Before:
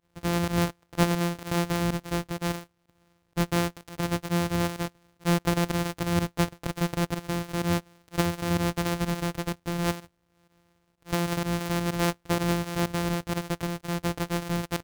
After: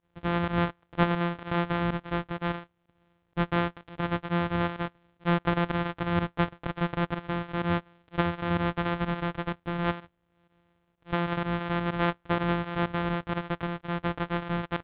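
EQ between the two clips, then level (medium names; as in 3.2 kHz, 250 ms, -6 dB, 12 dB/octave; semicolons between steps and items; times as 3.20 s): elliptic low-pass 3.5 kHz, stop band 60 dB; distance through air 86 m; dynamic bell 1.3 kHz, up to +5 dB, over -44 dBFS, Q 0.98; -1.0 dB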